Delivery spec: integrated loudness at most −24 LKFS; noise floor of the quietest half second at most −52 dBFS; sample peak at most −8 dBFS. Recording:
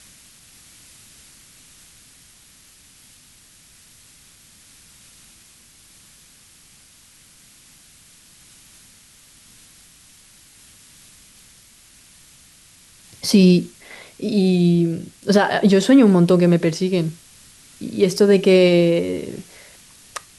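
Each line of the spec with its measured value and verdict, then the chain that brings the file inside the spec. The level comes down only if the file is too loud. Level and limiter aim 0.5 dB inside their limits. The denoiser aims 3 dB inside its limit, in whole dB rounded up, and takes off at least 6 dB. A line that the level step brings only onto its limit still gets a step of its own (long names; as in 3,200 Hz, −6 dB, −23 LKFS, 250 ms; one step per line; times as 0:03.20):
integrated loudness −16.5 LKFS: out of spec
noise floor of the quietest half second −50 dBFS: out of spec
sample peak −4.0 dBFS: out of spec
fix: level −8 dB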